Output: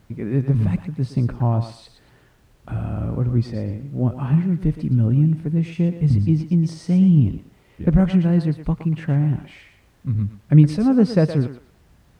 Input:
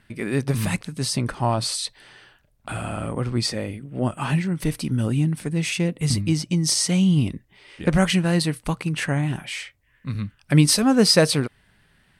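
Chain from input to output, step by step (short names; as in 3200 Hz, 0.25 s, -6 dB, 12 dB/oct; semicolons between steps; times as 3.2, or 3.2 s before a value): high shelf 6700 Hz -9 dB; thinning echo 0.116 s, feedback 26%, high-pass 510 Hz, level -8 dB; in parallel at -9.5 dB: requantised 6-bit, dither triangular; on the sum: HPF 50 Hz; tilt -4.5 dB/oct; gain -9.5 dB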